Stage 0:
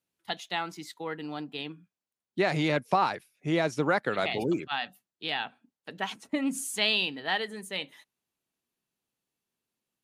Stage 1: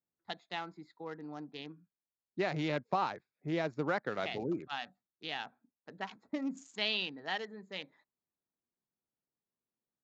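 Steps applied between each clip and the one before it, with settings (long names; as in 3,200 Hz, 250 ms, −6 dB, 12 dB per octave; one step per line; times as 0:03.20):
adaptive Wiener filter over 15 samples
Butterworth low-pass 7,200 Hz 96 dB per octave
level −7 dB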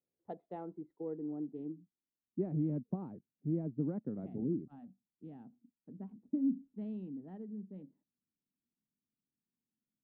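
low-pass filter sweep 500 Hz → 240 Hz, 0:00.41–0:02.67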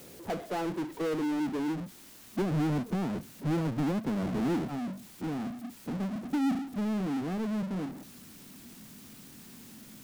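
power curve on the samples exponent 0.35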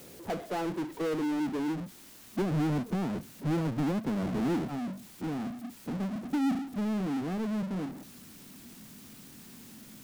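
no processing that can be heard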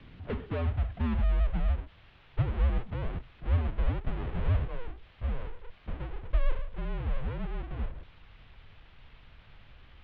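low shelf with overshoot 400 Hz +6.5 dB, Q 1.5
single-sideband voice off tune −250 Hz 280–3,600 Hz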